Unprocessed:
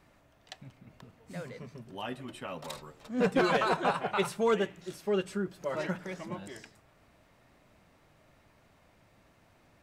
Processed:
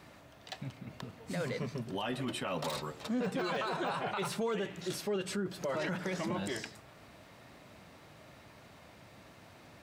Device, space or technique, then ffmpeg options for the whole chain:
broadcast voice chain: -af "highpass=75,deesser=0.95,acompressor=threshold=-33dB:ratio=5,equalizer=f=4.1k:t=o:w=0.79:g=3.5,alimiter=level_in=11dB:limit=-24dB:level=0:latency=1:release=11,volume=-11dB,volume=8dB"

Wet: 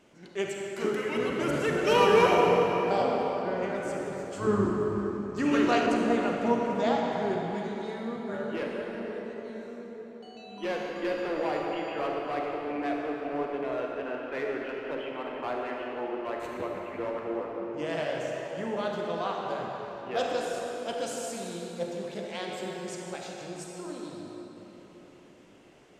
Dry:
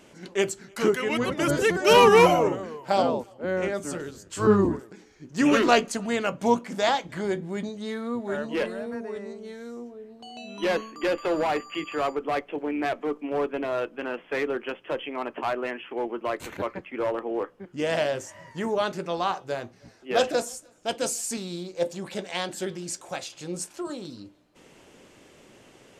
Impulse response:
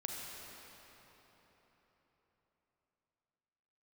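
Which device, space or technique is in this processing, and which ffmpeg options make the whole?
swimming-pool hall: -filter_complex "[1:a]atrim=start_sample=2205[a];[0:a][a]afir=irnorm=-1:irlink=0,highshelf=f=5.9k:g=-7,asettb=1/sr,asplit=3[b][c][d];[b]atrim=end=5.864[e];[c]atrim=start=5.86:end=7.54,asetpts=PTS-STARTPTS,afade=t=in:d=0.004:c=qsin,afade=t=out:st=1.676:d=0.004:c=qsin,tiltshelf=f=1.1k:g=3.5[f];[d]atrim=start=7.536[g];[e][f]acrossfade=d=0.004:c1=hsin:c2=qsin[h];[h][g]acrossfade=d=0.004:c1=qsin:c2=hsin,volume=-4.5dB"

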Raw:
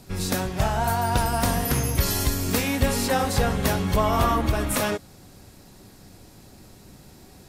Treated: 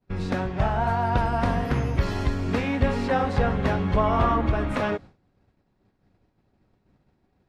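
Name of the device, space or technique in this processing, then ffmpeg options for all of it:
hearing-loss simulation: -af "lowpass=2.3k,agate=range=-33dB:threshold=-36dB:ratio=3:detection=peak"

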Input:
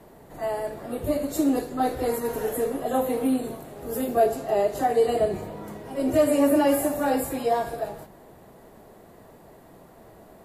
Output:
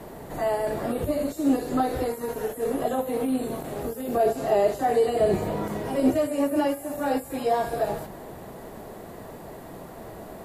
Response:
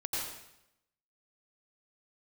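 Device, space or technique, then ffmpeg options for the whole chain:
de-esser from a sidechain: -filter_complex "[0:a]asplit=2[a][b];[b]highpass=4.2k,apad=whole_len=460443[c];[a][c]sidechaincompress=threshold=-54dB:ratio=6:attack=2:release=21,volume=9dB"

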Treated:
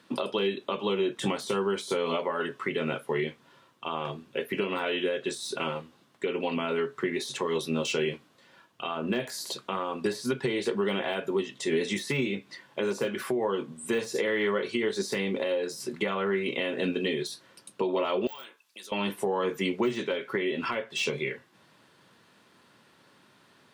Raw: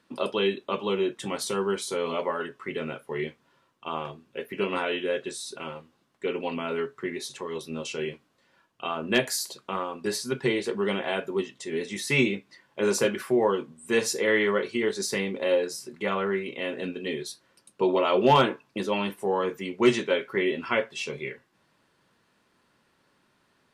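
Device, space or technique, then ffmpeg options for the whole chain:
broadcast voice chain: -filter_complex "[0:a]highpass=f=87:w=0.5412,highpass=f=87:w=1.3066,deesser=0.95,acompressor=threshold=-30dB:ratio=5,equalizer=f=3.5k:t=o:w=0.45:g=3,alimiter=level_in=0.5dB:limit=-24dB:level=0:latency=1:release=311,volume=-0.5dB,asettb=1/sr,asplit=3[a][b][c];[a]atrim=end=18.274[d];[b]atrim=start=18.27:end=18.92,asetpts=PTS-STARTPTS,afade=t=in:d=0.004:c=qsin,afade=t=out:st=0.646:d=0.004:c=qsin,aderivative[e];[c]atrim=start=18.916[f];[d][e]acrossfade=d=0.004:c1=hsin:c2=qsin[g];[g][f]acrossfade=d=0.004:c1=qsin:c2=hsin,volume=7dB"

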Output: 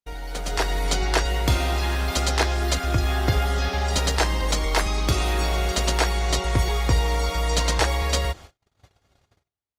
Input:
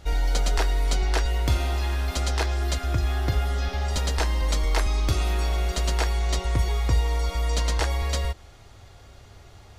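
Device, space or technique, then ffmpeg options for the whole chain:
video call: -af "highpass=f=100:p=1,dynaudnorm=f=150:g=7:m=11dB,agate=range=-47dB:threshold=-36dB:ratio=16:detection=peak,volume=-4dB" -ar 48000 -c:a libopus -b:a 32k

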